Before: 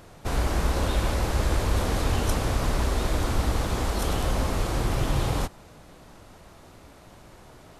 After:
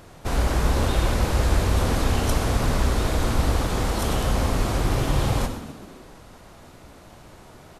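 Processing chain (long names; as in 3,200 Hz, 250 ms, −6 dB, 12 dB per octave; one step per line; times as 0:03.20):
echo with shifted repeats 129 ms, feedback 58%, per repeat +56 Hz, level −13.5 dB
on a send at −9 dB: convolution reverb RT60 0.65 s, pre-delay 42 ms
on the sum: level +2 dB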